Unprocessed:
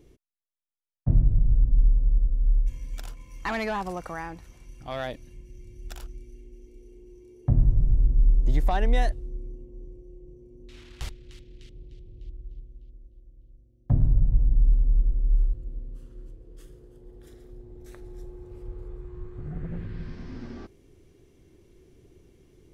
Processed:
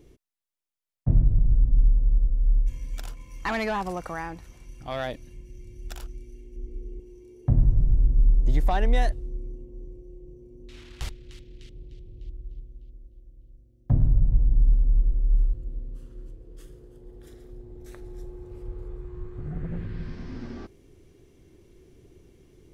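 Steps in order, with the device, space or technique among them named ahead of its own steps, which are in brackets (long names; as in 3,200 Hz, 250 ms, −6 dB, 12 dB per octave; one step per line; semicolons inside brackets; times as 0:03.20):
parallel distortion (in parallel at −13 dB: hard clipping −26.5 dBFS, distortion −5 dB)
0:06.56–0:07.00: on the sum: spectral tilt −2.5 dB per octave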